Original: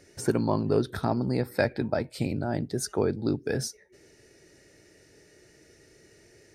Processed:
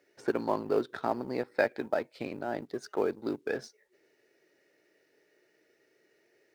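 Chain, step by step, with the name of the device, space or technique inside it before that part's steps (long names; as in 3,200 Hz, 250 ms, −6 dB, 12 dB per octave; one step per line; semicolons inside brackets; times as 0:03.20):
phone line with mismatched companding (band-pass filter 360–3,300 Hz; mu-law and A-law mismatch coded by A)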